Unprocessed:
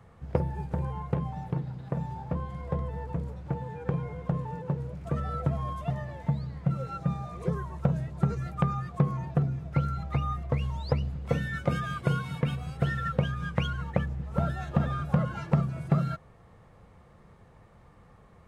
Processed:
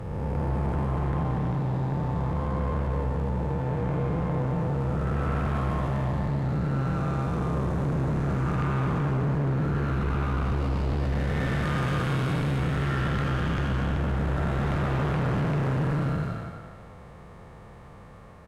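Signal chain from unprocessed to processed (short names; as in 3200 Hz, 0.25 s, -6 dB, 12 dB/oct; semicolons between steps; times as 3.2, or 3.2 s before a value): time blur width 0.587 s; added harmonics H 5 -8 dB, 6 -11 dB, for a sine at -22 dBFS; speakerphone echo 0.24 s, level -6 dB; gain +1 dB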